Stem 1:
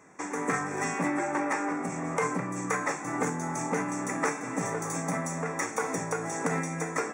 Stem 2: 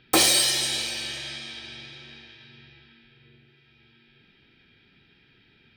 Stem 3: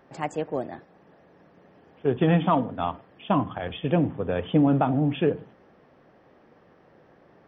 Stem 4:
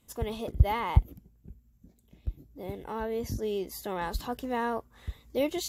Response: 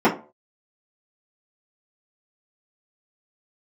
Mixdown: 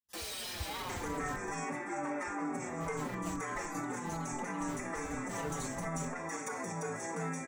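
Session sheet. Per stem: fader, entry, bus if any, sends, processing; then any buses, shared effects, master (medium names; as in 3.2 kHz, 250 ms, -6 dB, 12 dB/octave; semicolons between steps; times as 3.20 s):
-0.5 dB, 0.70 s, bus A, no send, none
-5.5 dB, 0.00 s, bus B, no send, tone controls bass -15 dB, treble +1 dB
-12.5 dB, 0.75 s, bus B, no send, none
-17.5 dB, 0.00 s, bus A, no send, gate with hold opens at -48 dBFS; high-order bell 1.9 kHz +8.5 dB 2.7 oct
bus A: 0.0 dB, peak limiter -26.5 dBFS, peak gain reduction 11 dB
bus B: 0.0 dB, Schmitt trigger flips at -32 dBFS; peak limiter -38.5 dBFS, peak gain reduction 9.5 dB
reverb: none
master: endless flanger 5 ms -2.3 Hz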